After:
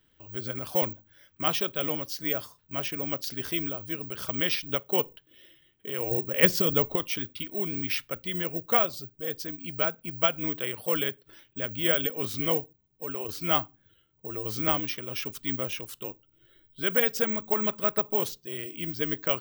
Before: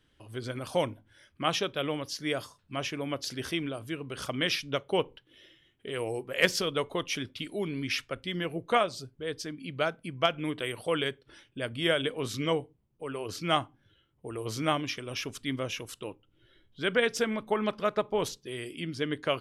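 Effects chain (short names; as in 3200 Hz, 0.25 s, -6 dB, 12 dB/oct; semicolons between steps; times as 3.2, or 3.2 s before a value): 6.11–6.96 low shelf 350 Hz +10.5 dB; careless resampling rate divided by 2×, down none, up zero stuff; gain -1 dB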